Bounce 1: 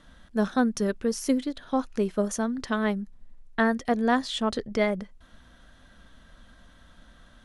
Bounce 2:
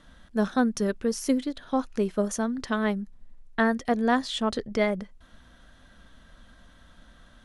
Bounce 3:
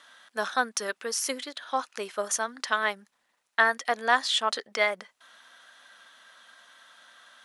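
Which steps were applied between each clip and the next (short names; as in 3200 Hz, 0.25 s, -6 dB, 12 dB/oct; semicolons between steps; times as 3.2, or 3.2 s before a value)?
nothing audible
HPF 960 Hz 12 dB/oct; gain +6.5 dB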